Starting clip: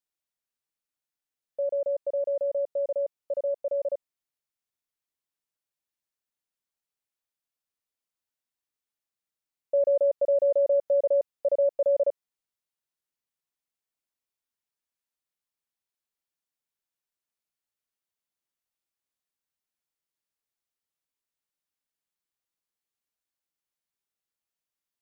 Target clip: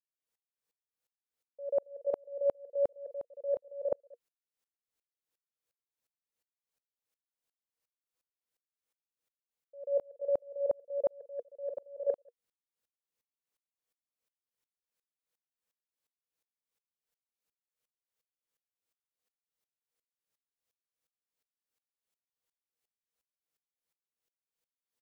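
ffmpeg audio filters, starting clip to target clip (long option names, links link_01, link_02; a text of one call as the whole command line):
ffmpeg -i in.wav -af "equalizer=frequency=480:width_type=o:width=0.26:gain=10.5,areverse,acompressor=threshold=-29dB:ratio=6,areverse,aecho=1:1:185:0.335,aeval=exprs='val(0)*pow(10,-39*if(lt(mod(-2.8*n/s,1),2*abs(-2.8)/1000),1-mod(-2.8*n/s,1)/(2*abs(-2.8)/1000),(mod(-2.8*n/s,1)-2*abs(-2.8)/1000)/(1-2*abs(-2.8)/1000))/20)':channel_layout=same,volume=5.5dB" out.wav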